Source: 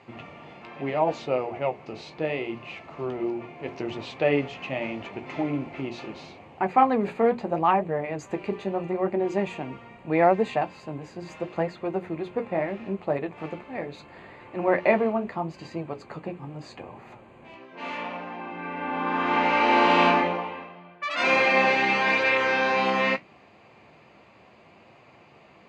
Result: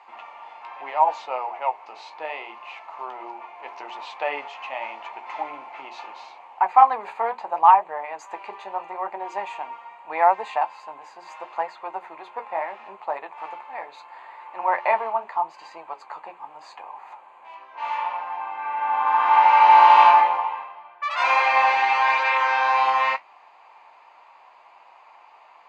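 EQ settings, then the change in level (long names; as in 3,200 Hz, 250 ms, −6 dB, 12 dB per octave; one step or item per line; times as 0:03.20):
high-pass with resonance 910 Hz, resonance Q 4.9
−2.0 dB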